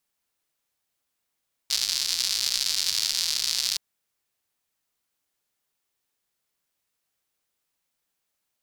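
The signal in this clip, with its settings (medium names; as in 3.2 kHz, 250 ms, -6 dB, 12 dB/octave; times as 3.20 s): rain from filtered ticks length 2.07 s, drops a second 190, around 4.6 kHz, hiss -27 dB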